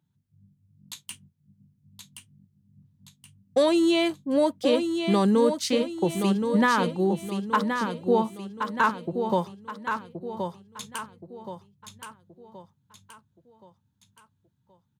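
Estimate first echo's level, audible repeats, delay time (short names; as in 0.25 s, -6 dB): -6.5 dB, 4, 1.074 s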